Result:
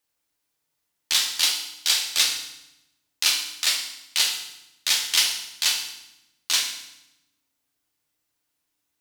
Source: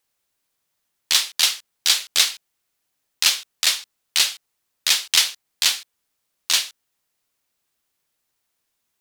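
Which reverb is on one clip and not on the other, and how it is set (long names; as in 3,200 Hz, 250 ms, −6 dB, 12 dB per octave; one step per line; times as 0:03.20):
feedback delay network reverb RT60 0.87 s, low-frequency decay 1.55×, high-frequency decay 0.95×, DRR 1 dB
level −5 dB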